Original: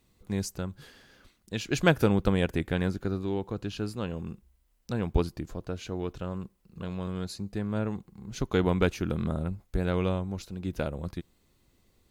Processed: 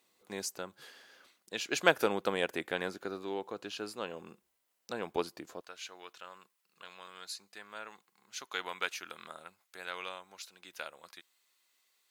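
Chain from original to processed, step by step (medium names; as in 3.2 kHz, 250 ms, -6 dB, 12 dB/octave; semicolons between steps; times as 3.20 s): high-pass 490 Hz 12 dB/octave, from 5.61 s 1.3 kHz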